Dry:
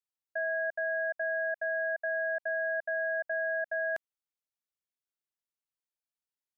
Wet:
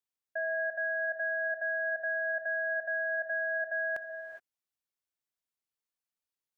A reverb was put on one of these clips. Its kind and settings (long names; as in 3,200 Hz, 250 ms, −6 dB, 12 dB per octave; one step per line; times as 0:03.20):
reverb whose tail is shaped and stops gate 440 ms rising, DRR 7.5 dB
level −1 dB